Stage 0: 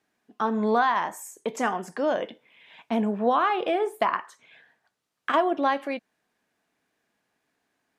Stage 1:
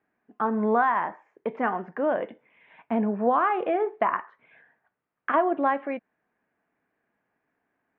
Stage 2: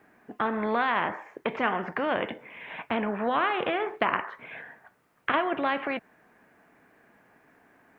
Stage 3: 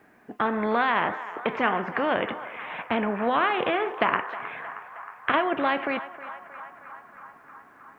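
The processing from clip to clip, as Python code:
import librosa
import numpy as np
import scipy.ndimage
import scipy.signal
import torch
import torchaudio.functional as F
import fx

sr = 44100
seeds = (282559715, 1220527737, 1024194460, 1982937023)

y1 = scipy.signal.sosfilt(scipy.signal.cheby2(4, 70, 8600.0, 'lowpass', fs=sr, output='sos'), x)
y2 = fx.spectral_comp(y1, sr, ratio=2.0)
y2 = y2 * librosa.db_to_amplitude(1.5)
y3 = fx.echo_banded(y2, sr, ms=314, feedback_pct=81, hz=1200.0, wet_db=-13.0)
y3 = y3 * librosa.db_to_amplitude(2.5)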